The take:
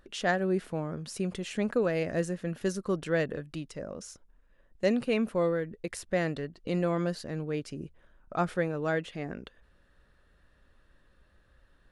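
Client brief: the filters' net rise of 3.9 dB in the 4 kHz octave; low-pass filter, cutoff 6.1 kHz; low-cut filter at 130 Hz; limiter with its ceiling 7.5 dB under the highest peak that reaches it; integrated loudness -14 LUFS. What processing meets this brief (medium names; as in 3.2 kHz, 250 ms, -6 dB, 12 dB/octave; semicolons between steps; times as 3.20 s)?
high-pass 130 Hz; low-pass 6.1 kHz; peaking EQ 4 kHz +6 dB; trim +19.5 dB; peak limiter -1.5 dBFS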